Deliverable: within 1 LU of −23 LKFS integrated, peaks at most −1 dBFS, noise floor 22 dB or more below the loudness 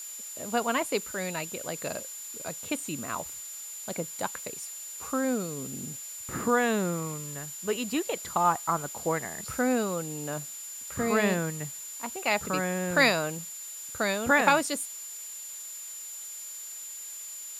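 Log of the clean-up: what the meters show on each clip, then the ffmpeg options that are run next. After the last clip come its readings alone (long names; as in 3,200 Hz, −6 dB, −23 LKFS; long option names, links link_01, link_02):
interfering tone 7,100 Hz; level of the tone −39 dBFS; background noise floor −41 dBFS; target noise floor −52 dBFS; integrated loudness −30.0 LKFS; sample peak −8.5 dBFS; target loudness −23.0 LKFS
→ -af "bandreject=frequency=7100:width=30"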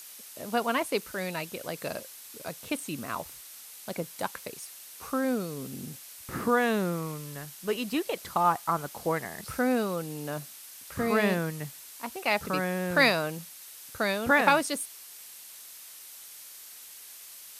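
interfering tone none found; background noise floor −47 dBFS; target noise floor −52 dBFS
→ -af "afftdn=noise_reduction=6:noise_floor=-47"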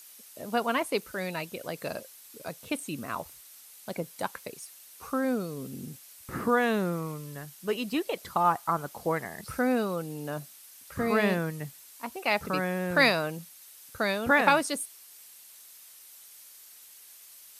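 background noise floor −52 dBFS; integrated loudness −29.5 LKFS; sample peak −8.5 dBFS; target loudness −23.0 LKFS
→ -af "volume=6.5dB"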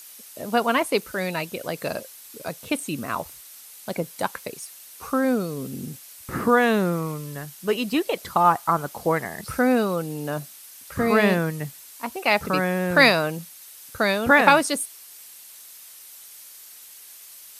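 integrated loudness −23.0 LKFS; sample peak −2.0 dBFS; background noise floor −45 dBFS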